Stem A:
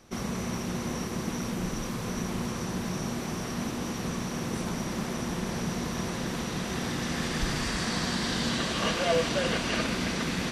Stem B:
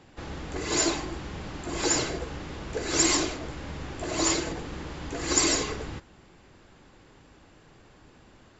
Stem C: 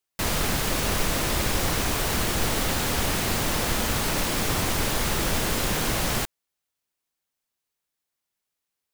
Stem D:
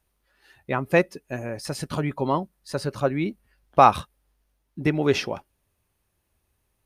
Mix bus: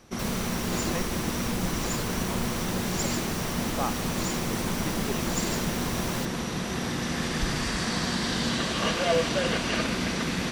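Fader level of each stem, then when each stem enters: +1.5, −10.5, −9.0, −17.0 decibels; 0.00, 0.00, 0.00, 0.00 seconds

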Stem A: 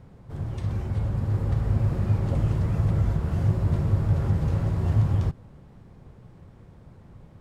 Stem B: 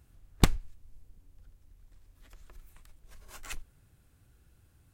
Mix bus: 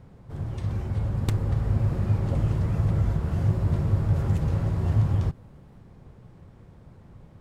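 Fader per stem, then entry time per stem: −0.5, −10.0 decibels; 0.00, 0.85 seconds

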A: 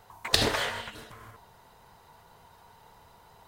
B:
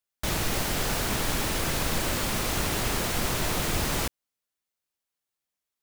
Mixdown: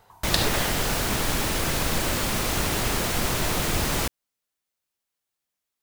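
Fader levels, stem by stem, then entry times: −1.0, +2.5 decibels; 0.00, 0.00 seconds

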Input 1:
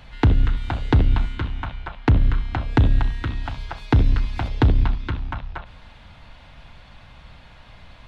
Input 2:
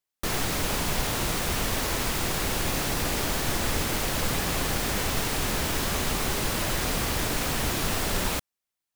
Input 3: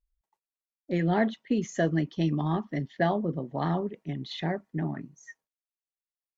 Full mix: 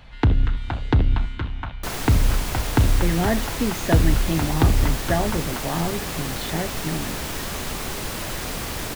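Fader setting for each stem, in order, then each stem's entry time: −1.5, −2.0, +2.5 decibels; 0.00, 1.60, 2.10 seconds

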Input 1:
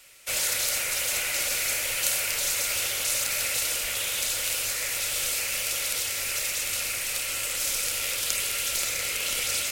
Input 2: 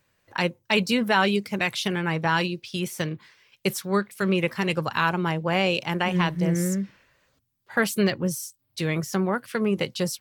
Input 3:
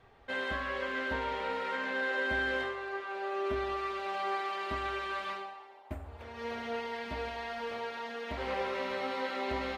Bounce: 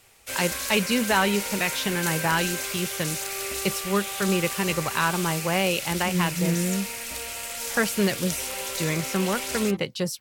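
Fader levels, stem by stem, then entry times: −5.0, −1.0, −3.5 decibels; 0.00, 0.00, 0.00 seconds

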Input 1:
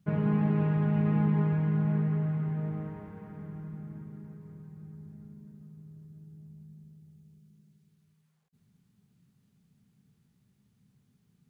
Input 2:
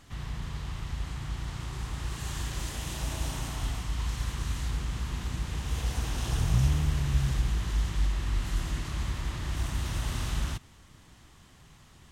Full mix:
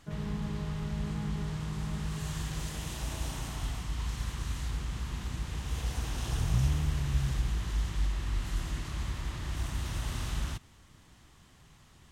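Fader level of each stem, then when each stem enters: −10.5, −3.0 decibels; 0.00, 0.00 seconds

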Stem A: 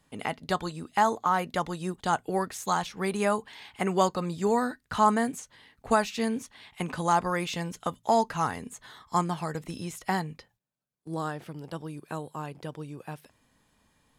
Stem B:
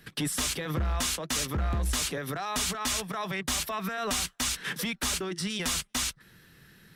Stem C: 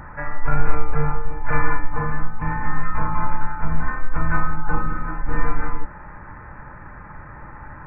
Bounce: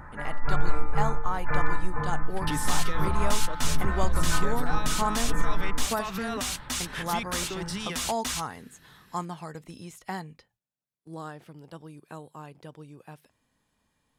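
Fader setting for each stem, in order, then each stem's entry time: −6.5, −2.0, −6.0 decibels; 0.00, 2.30, 0.00 seconds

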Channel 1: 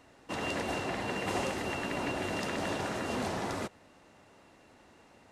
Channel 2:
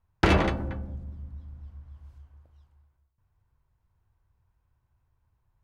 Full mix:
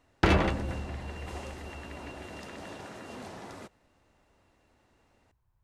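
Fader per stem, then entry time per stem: −9.5, −2.0 decibels; 0.00, 0.00 seconds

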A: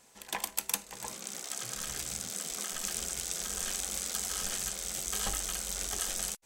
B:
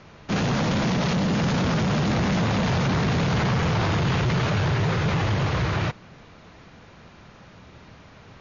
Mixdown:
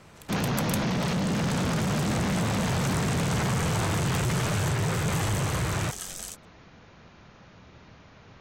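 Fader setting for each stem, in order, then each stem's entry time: −3.5, −4.0 decibels; 0.00, 0.00 seconds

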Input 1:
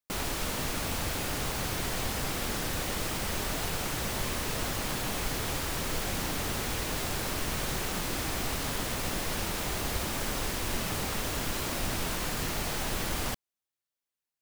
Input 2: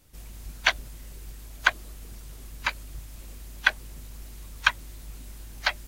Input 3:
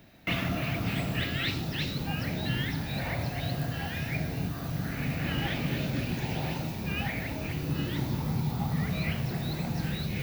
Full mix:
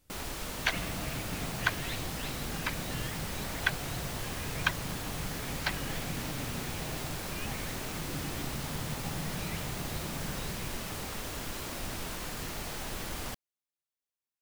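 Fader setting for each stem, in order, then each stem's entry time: −6.0, −8.0, −9.5 decibels; 0.00, 0.00, 0.45 seconds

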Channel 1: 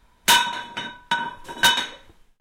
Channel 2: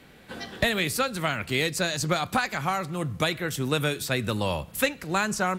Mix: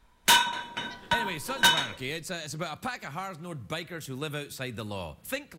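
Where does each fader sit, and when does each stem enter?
−4.0, −9.0 decibels; 0.00, 0.50 seconds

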